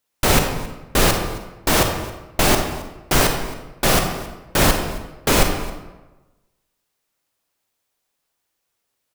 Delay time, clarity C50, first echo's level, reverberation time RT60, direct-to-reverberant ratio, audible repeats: 0.269 s, 5.0 dB, -20.0 dB, 1.1 s, 4.0 dB, 1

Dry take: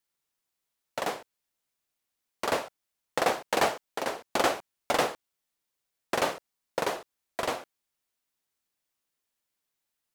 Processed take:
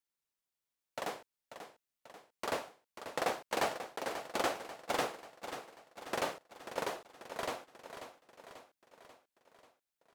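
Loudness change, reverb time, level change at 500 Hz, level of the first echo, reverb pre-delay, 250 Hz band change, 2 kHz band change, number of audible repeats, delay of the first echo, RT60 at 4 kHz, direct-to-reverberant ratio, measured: -8.5 dB, none, -7.5 dB, -10.5 dB, none, -7.5 dB, -7.5 dB, 5, 0.539 s, none, none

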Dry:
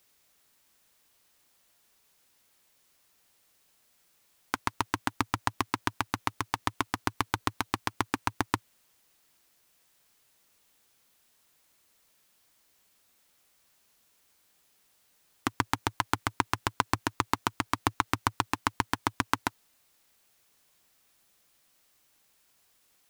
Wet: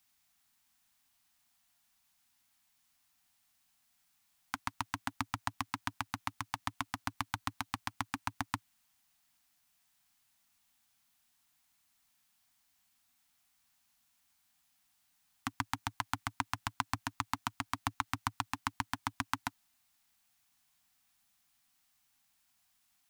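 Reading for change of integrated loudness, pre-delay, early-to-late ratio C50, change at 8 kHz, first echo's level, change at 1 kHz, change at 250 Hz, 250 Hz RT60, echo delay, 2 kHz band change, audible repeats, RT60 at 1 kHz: -7.5 dB, none, none, -6.5 dB, none, -7.5 dB, -9.0 dB, none, none, -7.0 dB, none, none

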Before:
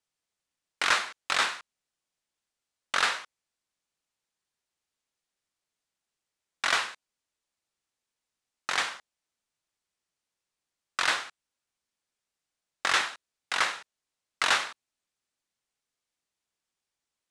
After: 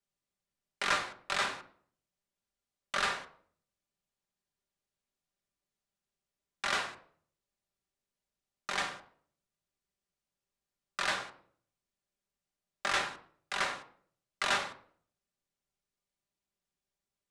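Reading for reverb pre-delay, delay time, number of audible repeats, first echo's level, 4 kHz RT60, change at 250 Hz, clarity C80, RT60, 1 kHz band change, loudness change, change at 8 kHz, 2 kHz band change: 5 ms, none, none, none, 0.45 s, +0.5 dB, 14.5 dB, 0.55 s, -4.5 dB, -6.0 dB, -7.0 dB, -6.0 dB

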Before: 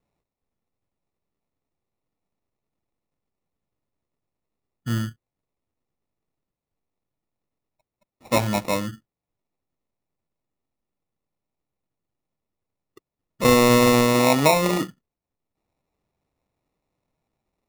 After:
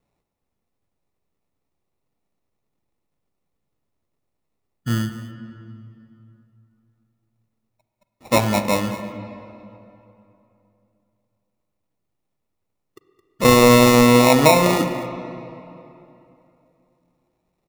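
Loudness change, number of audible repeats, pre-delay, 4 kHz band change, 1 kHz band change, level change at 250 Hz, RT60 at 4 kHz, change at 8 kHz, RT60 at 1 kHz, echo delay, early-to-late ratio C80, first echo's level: +3.5 dB, 1, 36 ms, +4.0 dB, +4.5 dB, +4.5 dB, 2.1 s, +3.5 dB, 2.9 s, 0.217 s, 9.0 dB, -15.5 dB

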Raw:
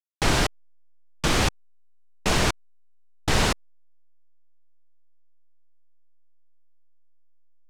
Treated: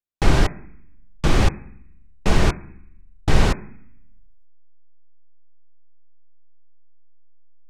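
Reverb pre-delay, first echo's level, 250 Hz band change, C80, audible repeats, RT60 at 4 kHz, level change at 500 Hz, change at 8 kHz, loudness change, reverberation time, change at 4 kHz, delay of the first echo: 3 ms, none, +4.5 dB, 23.5 dB, none, 0.85 s, +2.5 dB, -5.5 dB, +2.5 dB, 0.65 s, -4.0 dB, none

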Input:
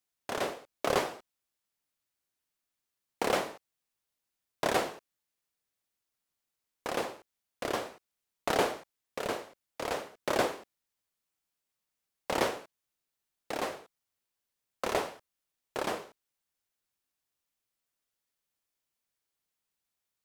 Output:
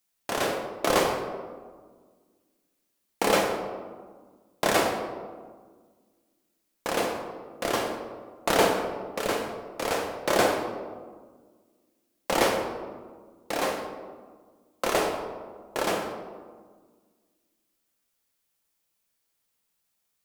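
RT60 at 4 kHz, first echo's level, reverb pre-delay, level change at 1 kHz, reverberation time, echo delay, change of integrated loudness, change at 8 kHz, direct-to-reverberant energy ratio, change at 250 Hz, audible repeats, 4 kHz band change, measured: 0.80 s, none, 4 ms, +6.5 dB, 1.6 s, none, +6.0 dB, +8.5 dB, 2.0 dB, +8.0 dB, none, +7.0 dB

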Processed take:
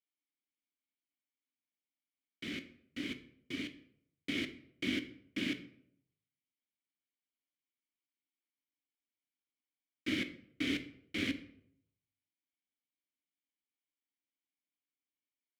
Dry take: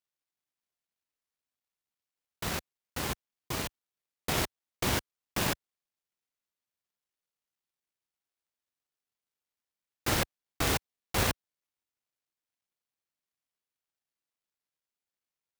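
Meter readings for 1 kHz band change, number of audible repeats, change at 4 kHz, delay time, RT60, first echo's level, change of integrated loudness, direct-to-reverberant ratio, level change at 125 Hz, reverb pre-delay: -23.5 dB, none, -5.5 dB, none, 0.70 s, none, -6.5 dB, 7.5 dB, -14.5 dB, 3 ms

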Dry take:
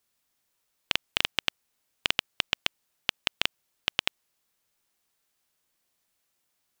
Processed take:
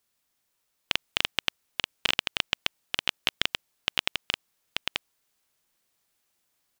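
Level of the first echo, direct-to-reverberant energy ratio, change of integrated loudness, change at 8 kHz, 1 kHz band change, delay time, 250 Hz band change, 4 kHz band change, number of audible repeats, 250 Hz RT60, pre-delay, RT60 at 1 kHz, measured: -3.5 dB, none, +0.5 dB, +1.5 dB, +1.5 dB, 0.885 s, +2.0 dB, +1.5 dB, 1, none, none, none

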